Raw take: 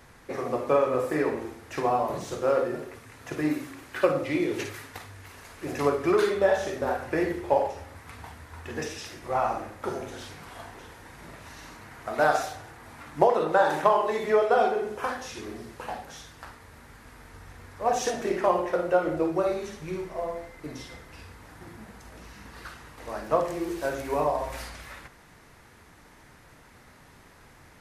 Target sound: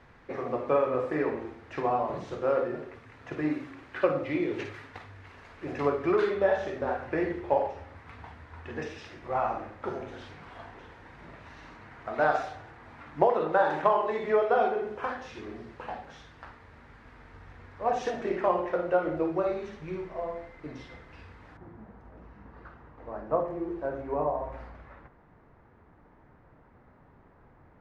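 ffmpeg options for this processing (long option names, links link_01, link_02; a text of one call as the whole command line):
ffmpeg -i in.wav -af "asetnsamples=nb_out_samples=441:pad=0,asendcmd='21.57 lowpass f 1100',lowpass=3000,volume=-2.5dB" out.wav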